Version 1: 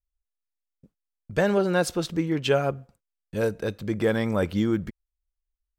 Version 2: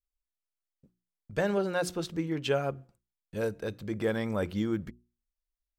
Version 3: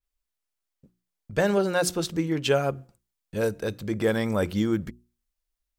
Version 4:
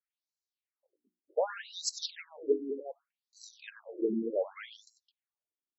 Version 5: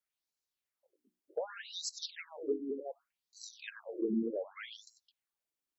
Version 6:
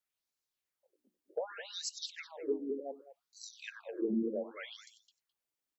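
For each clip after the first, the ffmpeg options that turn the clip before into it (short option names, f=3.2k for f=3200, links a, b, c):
-af "bandreject=f=60:t=h:w=6,bandreject=f=120:t=h:w=6,bandreject=f=180:t=h:w=6,bandreject=f=240:t=h:w=6,bandreject=f=300:t=h:w=6,bandreject=f=360:t=h:w=6,volume=-6dB"
-af "adynamicequalizer=threshold=0.00355:dfrequency=4500:dqfactor=0.7:tfrequency=4500:tqfactor=0.7:attack=5:release=100:ratio=0.375:range=3:mode=boostabove:tftype=highshelf,volume=5.5dB"
-af "aecho=1:1:96.21|212.8:0.282|0.282,afftfilt=real='re*between(b*sr/1024,290*pow(5600/290,0.5+0.5*sin(2*PI*0.66*pts/sr))/1.41,290*pow(5600/290,0.5+0.5*sin(2*PI*0.66*pts/sr))*1.41)':imag='im*between(b*sr/1024,290*pow(5600/290,0.5+0.5*sin(2*PI*0.66*pts/sr))/1.41,290*pow(5600/290,0.5+0.5*sin(2*PI*0.66*pts/sr))*1.41)':win_size=1024:overlap=0.75,volume=-2.5dB"
-filter_complex "[0:a]acrossover=split=280[a][b];[b]acompressor=threshold=-41dB:ratio=4[c];[a][c]amix=inputs=2:normalize=0,volume=2.5dB"
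-filter_complex "[0:a]asplit=2[a][b];[b]adelay=209.9,volume=-14dB,highshelf=f=4k:g=-4.72[c];[a][c]amix=inputs=2:normalize=0"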